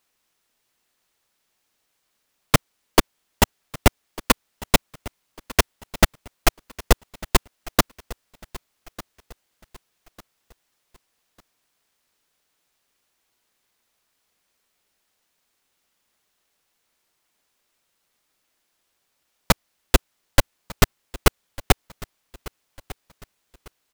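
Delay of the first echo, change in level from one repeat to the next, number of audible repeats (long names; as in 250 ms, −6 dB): 1,199 ms, −9.0 dB, 2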